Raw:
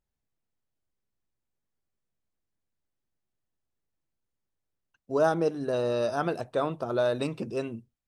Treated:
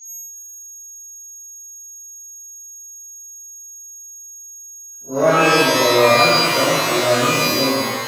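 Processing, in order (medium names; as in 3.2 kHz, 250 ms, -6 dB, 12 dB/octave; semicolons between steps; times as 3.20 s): spectral blur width 93 ms; whistle 6.6 kHz -47 dBFS; pitch-shifted reverb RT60 1.3 s, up +12 st, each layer -2 dB, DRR -9 dB; trim +2.5 dB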